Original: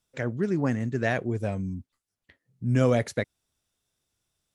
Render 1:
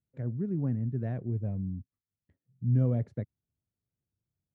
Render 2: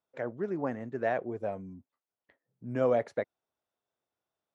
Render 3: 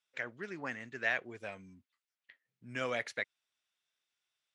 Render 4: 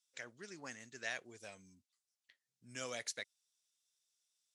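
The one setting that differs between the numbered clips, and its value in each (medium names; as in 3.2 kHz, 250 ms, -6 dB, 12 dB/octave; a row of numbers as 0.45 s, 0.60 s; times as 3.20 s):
band-pass filter, frequency: 120 Hz, 710 Hz, 2.3 kHz, 6 kHz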